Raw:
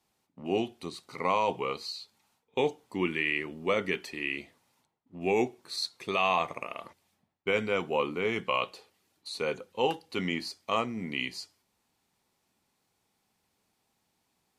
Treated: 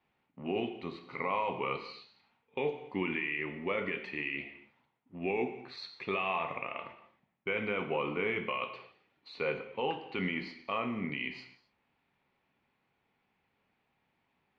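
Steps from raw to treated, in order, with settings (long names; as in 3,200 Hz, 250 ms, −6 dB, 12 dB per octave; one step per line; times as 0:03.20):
transistor ladder low-pass 3,000 Hz, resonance 35%
brickwall limiter −29.5 dBFS, peak gain reduction 10 dB
reverb whose tail is shaped and stops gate 300 ms falling, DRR 6.5 dB
level +6.5 dB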